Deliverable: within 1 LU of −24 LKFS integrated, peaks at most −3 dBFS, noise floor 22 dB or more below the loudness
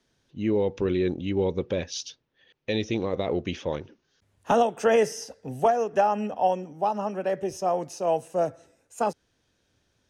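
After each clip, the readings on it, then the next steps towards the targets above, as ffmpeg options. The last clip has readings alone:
integrated loudness −26.5 LKFS; sample peak −11.5 dBFS; target loudness −24.0 LKFS
→ -af "volume=2.5dB"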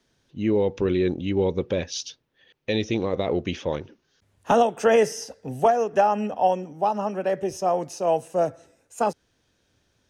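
integrated loudness −24.0 LKFS; sample peak −9.0 dBFS; background noise floor −70 dBFS

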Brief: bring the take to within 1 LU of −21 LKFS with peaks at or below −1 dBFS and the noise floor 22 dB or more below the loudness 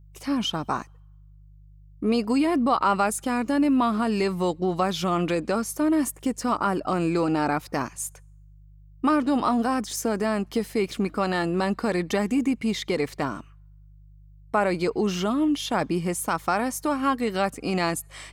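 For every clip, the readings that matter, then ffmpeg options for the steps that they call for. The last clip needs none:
mains hum 50 Hz; hum harmonics up to 150 Hz; level of the hum −47 dBFS; integrated loudness −25.0 LKFS; sample peak −10.5 dBFS; target loudness −21.0 LKFS
→ -af "bandreject=frequency=50:width_type=h:width=4,bandreject=frequency=100:width_type=h:width=4,bandreject=frequency=150:width_type=h:width=4"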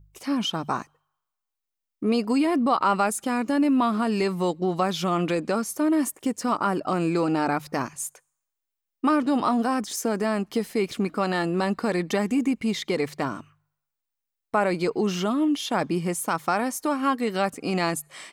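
mains hum none found; integrated loudness −25.0 LKFS; sample peak −10.5 dBFS; target loudness −21.0 LKFS
→ -af "volume=4dB"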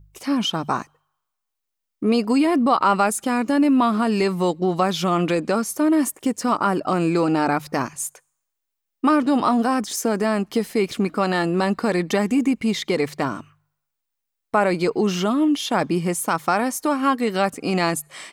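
integrated loudness −21.0 LKFS; sample peak −6.5 dBFS; background noise floor −80 dBFS

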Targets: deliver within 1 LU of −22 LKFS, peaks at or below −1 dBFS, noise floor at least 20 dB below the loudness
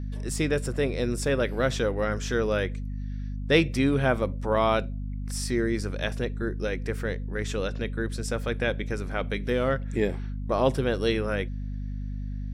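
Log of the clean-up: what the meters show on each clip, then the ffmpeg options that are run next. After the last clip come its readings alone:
mains hum 50 Hz; hum harmonics up to 250 Hz; level of the hum −30 dBFS; integrated loudness −28.0 LKFS; sample peak −8.0 dBFS; target loudness −22.0 LKFS
→ -af "bandreject=frequency=50:width_type=h:width=4,bandreject=frequency=100:width_type=h:width=4,bandreject=frequency=150:width_type=h:width=4,bandreject=frequency=200:width_type=h:width=4,bandreject=frequency=250:width_type=h:width=4"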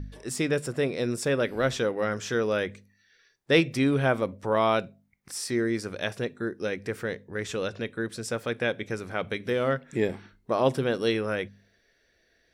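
mains hum none found; integrated loudness −28.0 LKFS; sample peak −9.0 dBFS; target loudness −22.0 LKFS
→ -af "volume=6dB"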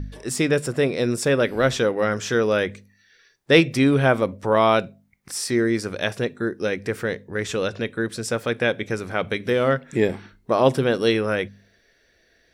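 integrated loudness −22.0 LKFS; sample peak −3.0 dBFS; background noise floor −62 dBFS

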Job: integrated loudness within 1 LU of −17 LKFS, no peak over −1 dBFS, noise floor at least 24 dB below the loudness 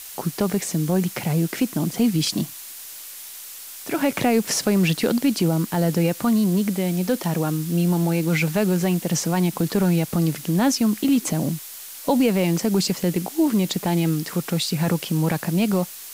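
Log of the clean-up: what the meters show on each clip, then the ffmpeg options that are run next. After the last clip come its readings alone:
background noise floor −38 dBFS; target noise floor −46 dBFS; integrated loudness −22.0 LKFS; sample peak −8.0 dBFS; target loudness −17.0 LKFS
→ -af "afftdn=noise_reduction=8:noise_floor=-38"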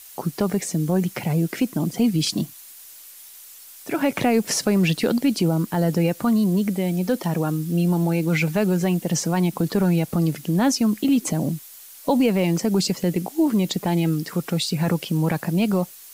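background noise floor −44 dBFS; target noise floor −46 dBFS
→ -af "afftdn=noise_reduction=6:noise_floor=-44"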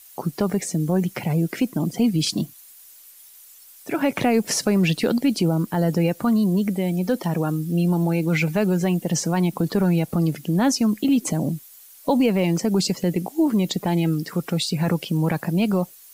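background noise floor −47 dBFS; integrated loudness −22.0 LKFS; sample peak −8.5 dBFS; target loudness −17.0 LKFS
→ -af "volume=5dB"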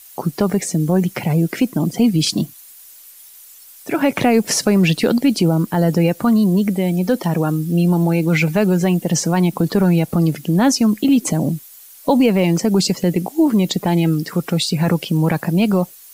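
integrated loudness −17.0 LKFS; sample peak −3.5 dBFS; background noise floor −42 dBFS

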